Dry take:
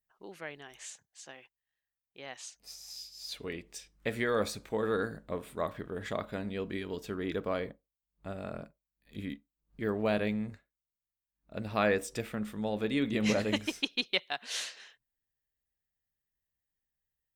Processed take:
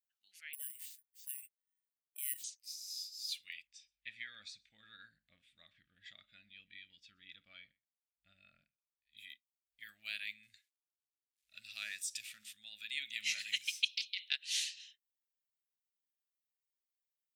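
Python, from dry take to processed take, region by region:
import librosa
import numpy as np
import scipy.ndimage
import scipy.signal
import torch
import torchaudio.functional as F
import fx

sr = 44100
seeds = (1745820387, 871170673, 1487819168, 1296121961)

y = fx.chain(x, sr, fx.bandpass_edges(low_hz=300.0, high_hz=2600.0),
    fx.resample_bad(factor=4, down='none', up='zero_stuff'), at=(0.53, 2.44))
y = fx.chain(y, sr, fx.lowpass(hz=4500.0, slope=12),
    fx.tilt_shelf(db=7.0, hz=760.0),
    fx.echo_single(ms=125, db=-23.5), at=(3.67, 9.17))
y = fx.chain(y, sr, fx.law_mismatch(coded='mu'),
    fx.lowpass(hz=12000.0, slope=12),
    fx.dynamic_eq(hz=2400.0, q=0.88, threshold_db=-45.0, ratio=4.0, max_db=-6), at=(10.43, 12.53))
y = fx.chain(y, sr, fx.over_compress(threshold_db=-32.0, ratio=-0.5),
    fx.doppler_dist(depth_ms=0.29), at=(13.89, 14.35))
y = fx.noise_reduce_blind(y, sr, reduce_db=8)
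y = scipy.signal.sosfilt(scipy.signal.cheby2(4, 40, 1100.0, 'highpass', fs=sr, output='sos'), y)
y = y * librosa.db_to_amplitude(1.0)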